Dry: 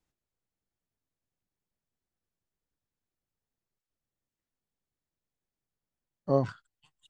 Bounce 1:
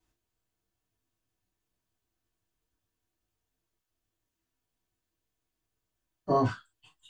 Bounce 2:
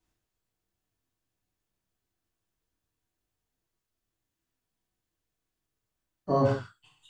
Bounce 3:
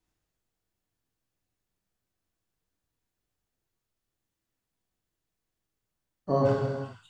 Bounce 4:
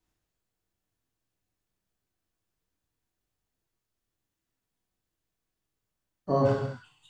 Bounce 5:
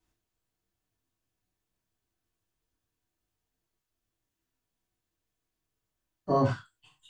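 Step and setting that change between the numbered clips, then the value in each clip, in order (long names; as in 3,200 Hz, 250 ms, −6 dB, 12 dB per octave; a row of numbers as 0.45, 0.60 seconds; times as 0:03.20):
reverb whose tail is shaped and stops, gate: 80, 210, 530, 350, 130 milliseconds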